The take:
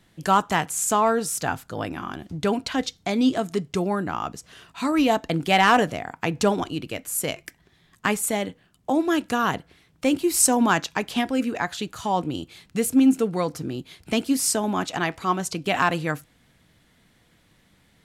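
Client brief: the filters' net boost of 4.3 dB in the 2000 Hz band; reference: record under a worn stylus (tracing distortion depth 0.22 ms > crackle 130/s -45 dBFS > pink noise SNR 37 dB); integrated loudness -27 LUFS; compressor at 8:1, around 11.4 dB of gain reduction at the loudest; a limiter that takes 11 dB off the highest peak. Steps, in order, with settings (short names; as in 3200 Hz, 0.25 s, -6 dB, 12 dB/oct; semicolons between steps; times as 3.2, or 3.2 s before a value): bell 2000 Hz +5.5 dB; compressor 8:1, threshold -24 dBFS; limiter -20.5 dBFS; tracing distortion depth 0.22 ms; crackle 130/s -45 dBFS; pink noise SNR 37 dB; gain +4.5 dB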